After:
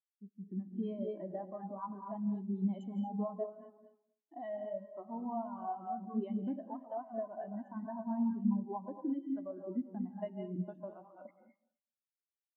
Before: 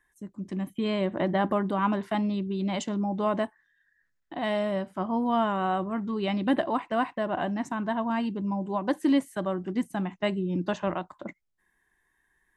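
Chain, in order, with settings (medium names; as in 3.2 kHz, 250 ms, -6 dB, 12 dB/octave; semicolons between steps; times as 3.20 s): backward echo that repeats 126 ms, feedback 56%, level -9.5 dB; high-pass 310 Hz 6 dB/octave; compression 6:1, threshold -35 dBFS, peak gain reduction 13.5 dB; gated-style reverb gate 260 ms rising, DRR 3 dB; spectral contrast expander 2.5:1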